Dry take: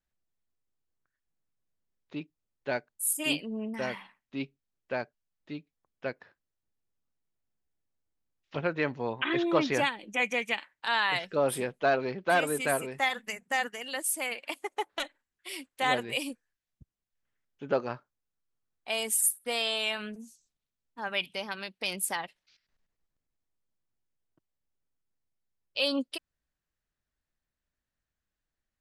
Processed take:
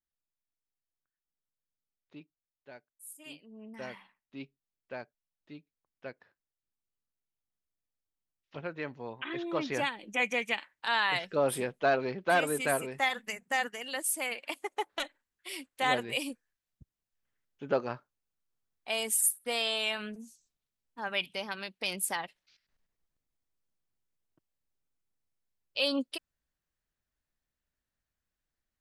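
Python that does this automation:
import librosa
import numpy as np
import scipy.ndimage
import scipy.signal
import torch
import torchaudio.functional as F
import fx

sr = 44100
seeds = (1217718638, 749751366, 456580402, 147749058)

y = fx.gain(x, sr, db=fx.line((2.15, -11.5), (2.72, -19.0), (3.39, -19.0), (3.81, -8.5), (9.44, -8.5), (10.08, -1.0)))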